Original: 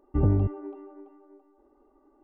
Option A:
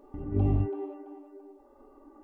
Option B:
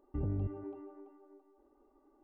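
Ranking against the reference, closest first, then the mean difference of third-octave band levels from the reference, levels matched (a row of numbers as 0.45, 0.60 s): B, A; 3.0, 5.0 dB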